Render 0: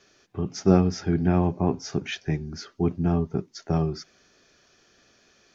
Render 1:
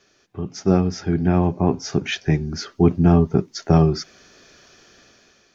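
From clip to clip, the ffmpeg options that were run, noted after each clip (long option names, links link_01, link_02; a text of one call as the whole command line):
ffmpeg -i in.wav -af "dynaudnorm=framelen=380:gausssize=5:maxgain=12dB" out.wav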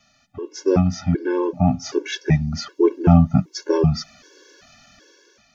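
ffmpeg -i in.wav -af "afftfilt=real='re*gt(sin(2*PI*1.3*pts/sr)*(1-2*mod(floor(b*sr/1024/290),2)),0)':imag='im*gt(sin(2*PI*1.3*pts/sr)*(1-2*mod(floor(b*sr/1024/290),2)),0)':win_size=1024:overlap=0.75,volume=3.5dB" out.wav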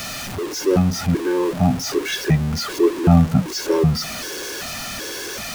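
ffmpeg -i in.wav -af "aeval=exprs='val(0)+0.5*0.0708*sgn(val(0))':channel_layout=same,volume=-1dB" out.wav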